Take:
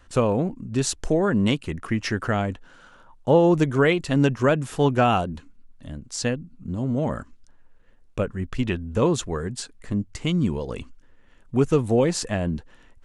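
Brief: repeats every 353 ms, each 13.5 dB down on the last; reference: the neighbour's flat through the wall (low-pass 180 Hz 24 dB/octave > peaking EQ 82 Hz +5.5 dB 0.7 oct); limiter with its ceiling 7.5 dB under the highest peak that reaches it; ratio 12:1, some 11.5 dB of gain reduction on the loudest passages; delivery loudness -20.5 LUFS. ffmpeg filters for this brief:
-af "acompressor=threshold=0.0562:ratio=12,alimiter=limit=0.075:level=0:latency=1,lowpass=f=180:w=0.5412,lowpass=f=180:w=1.3066,equalizer=f=82:t=o:w=0.7:g=5.5,aecho=1:1:353|706:0.211|0.0444,volume=6.68"

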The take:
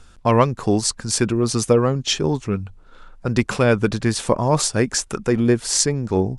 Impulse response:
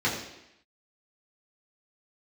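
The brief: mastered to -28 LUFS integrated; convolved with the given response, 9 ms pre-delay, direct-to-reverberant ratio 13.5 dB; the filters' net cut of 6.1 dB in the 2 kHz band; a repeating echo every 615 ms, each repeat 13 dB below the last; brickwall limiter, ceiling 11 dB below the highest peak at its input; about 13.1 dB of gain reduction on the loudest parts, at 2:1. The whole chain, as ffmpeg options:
-filter_complex "[0:a]equalizer=f=2000:t=o:g=-8.5,acompressor=threshold=0.0158:ratio=2,alimiter=limit=0.0708:level=0:latency=1,aecho=1:1:615|1230|1845:0.224|0.0493|0.0108,asplit=2[s0][s1];[1:a]atrim=start_sample=2205,adelay=9[s2];[s1][s2]afir=irnorm=-1:irlink=0,volume=0.0501[s3];[s0][s3]amix=inputs=2:normalize=0,volume=1.88"

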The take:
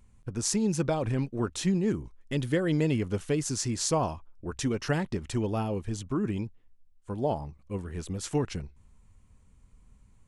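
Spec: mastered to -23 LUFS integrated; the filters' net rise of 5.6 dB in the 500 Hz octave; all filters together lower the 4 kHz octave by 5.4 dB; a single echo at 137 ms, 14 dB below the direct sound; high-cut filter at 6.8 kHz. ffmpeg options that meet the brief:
-af "lowpass=6800,equalizer=f=500:t=o:g=7,equalizer=f=4000:t=o:g=-6.5,aecho=1:1:137:0.2,volume=1.78"

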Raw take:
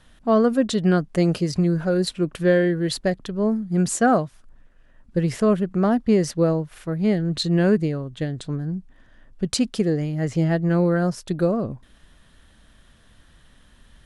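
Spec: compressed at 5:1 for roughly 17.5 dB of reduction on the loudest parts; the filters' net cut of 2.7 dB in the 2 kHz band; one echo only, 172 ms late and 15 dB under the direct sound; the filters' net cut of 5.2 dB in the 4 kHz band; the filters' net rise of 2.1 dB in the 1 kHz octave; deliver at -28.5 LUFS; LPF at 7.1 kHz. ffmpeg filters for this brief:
-af "lowpass=7100,equalizer=f=1000:t=o:g=4.5,equalizer=f=2000:t=o:g=-5,equalizer=f=4000:t=o:g=-4.5,acompressor=threshold=0.02:ratio=5,aecho=1:1:172:0.178,volume=2.51"

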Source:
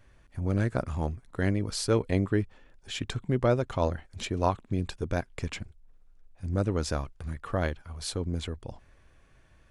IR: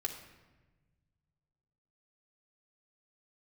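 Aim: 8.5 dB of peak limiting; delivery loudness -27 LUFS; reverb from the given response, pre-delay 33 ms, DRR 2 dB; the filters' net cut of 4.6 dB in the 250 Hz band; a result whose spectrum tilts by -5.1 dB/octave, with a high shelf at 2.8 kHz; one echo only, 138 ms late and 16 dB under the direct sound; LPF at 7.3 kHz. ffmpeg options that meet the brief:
-filter_complex "[0:a]lowpass=7300,equalizer=f=250:t=o:g=-6.5,highshelf=f=2800:g=4.5,alimiter=limit=0.0944:level=0:latency=1,aecho=1:1:138:0.158,asplit=2[s0][s1];[1:a]atrim=start_sample=2205,adelay=33[s2];[s1][s2]afir=irnorm=-1:irlink=0,volume=0.668[s3];[s0][s3]amix=inputs=2:normalize=0,volume=1.68"

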